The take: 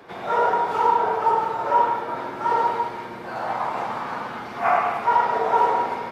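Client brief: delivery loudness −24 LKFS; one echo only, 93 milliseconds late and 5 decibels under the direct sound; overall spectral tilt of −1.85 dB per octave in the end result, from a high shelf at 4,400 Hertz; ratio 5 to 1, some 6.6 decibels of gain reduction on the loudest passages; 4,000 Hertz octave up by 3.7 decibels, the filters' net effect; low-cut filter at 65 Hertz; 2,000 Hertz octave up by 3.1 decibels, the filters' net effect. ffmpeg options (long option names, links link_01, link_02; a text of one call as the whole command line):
ffmpeg -i in.wav -af "highpass=65,equalizer=frequency=2000:width_type=o:gain=4,equalizer=frequency=4000:width_type=o:gain=6,highshelf=frequency=4400:gain=-5.5,acompressor=threshold=-21dB:ratio=5,aecho=1:1:93:0.562,volume=0.5dB" out.wav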